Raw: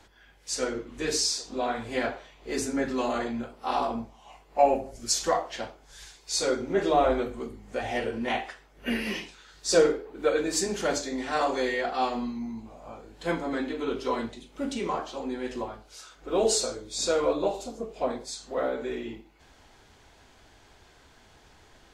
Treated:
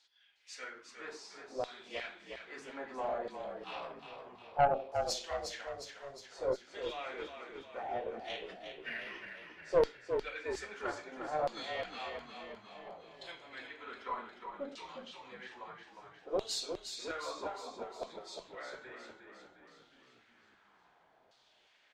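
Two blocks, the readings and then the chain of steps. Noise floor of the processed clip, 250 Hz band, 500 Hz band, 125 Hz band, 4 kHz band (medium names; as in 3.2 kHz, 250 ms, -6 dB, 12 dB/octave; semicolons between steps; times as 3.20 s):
-68 dBFS, -18.5 dB, -10.0 dB, -11.0 dB, -11.0 dB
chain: LFO band-pass saw down 0.61 Hz 540–4500 Hz; valve stage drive 17 dB, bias 0.55; frequency-shifting echo 358 ms, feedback 57%, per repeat -36 Hz, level -7 dB; trim -1 dB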